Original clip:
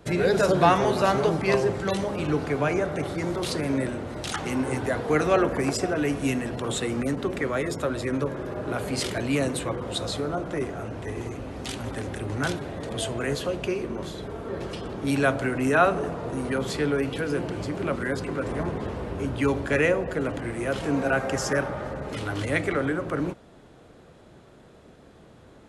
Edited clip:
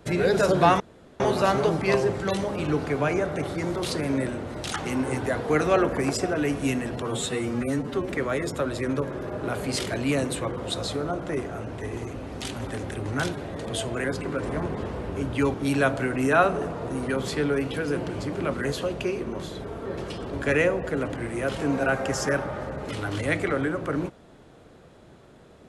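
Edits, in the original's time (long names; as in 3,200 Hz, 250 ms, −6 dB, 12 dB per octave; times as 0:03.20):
0:00.80: splice in room tone 0.40 s
0:06.62–0:07.34: time-stretch 1.5×
0:13.28–0:14.96: swap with 0:18.07–0:19.57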